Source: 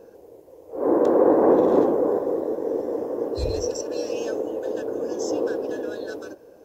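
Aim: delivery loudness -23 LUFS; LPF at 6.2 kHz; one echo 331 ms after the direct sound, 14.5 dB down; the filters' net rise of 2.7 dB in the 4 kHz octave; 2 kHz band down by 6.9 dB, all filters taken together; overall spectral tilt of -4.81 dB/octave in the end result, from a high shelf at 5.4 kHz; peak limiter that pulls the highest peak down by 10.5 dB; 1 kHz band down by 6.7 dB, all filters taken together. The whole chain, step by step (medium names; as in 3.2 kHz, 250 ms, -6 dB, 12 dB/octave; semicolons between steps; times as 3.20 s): low-pass 6.2 kHz; peaking EQ 1 kHz -8.5 dB; peaking EQ 2 kHz -7.5 dB; peaking EQ 4 kHz +3.5 dB; treble shelf 5.4 kHz +6.5 dB; peak limiter -17.5 dBFS; delay 331 ms -14.5 dB; trim +5 dB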